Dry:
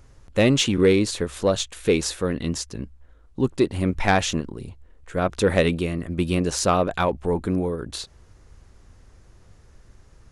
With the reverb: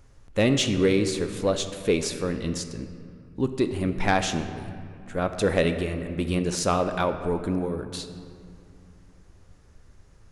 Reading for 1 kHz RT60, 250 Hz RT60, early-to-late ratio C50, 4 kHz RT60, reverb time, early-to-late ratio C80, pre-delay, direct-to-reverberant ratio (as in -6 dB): 2.4 s, 3.0 s, 9.0 dB, 1.4 s, 2.4 s, 10.0 dB, 3 ms, 8.0 dB